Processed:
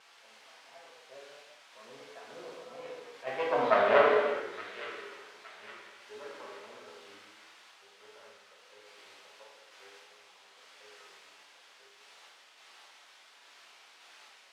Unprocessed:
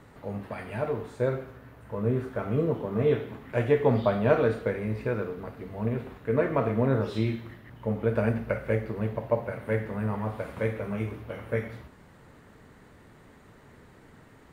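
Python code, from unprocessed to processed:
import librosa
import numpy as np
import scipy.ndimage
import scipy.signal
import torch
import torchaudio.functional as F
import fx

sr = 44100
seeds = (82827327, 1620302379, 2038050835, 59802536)

p1 = fx.self_delay(x, sr, depth_ms=0.2)
p2 = fx.doppler_pass(p1, sr, speed_mps=30, closest_m=3.9, pass_at_s=3.84)
p3 = fx.quant_dither(p2, sr, seeds[0], bits=8, dither='triangular')
p4 = p2 + (p3 * librosa.db_to_amplitude(-6.0))
p5 = fx.tremolo_random(p4, sr, seeds[1], hz=3.5, depth_pct=55)
p6 = p5 + fx.echo_wet_highpass(p5, sr, ms=866, feedback_pct=45, hz=2100.0, wet_db=-9.0, dry=0)
p7 = fx.rev_gated(p6, sr, seeds[2], gate_ms=450, shape='falling', drr_db=-3.5)
p8 = fx.vibrato(p7, sr, rate_hz=1.5, depth_cents=48.0)
p9 = fx.bandpass_edges(p8, sr, low_hz=620.0, high_hz=3600.0)
p10 = fx.attack_slew(p9, sr, db_per_s=290.0)
y = p10 * librosa.db_to_amplitude(2.0)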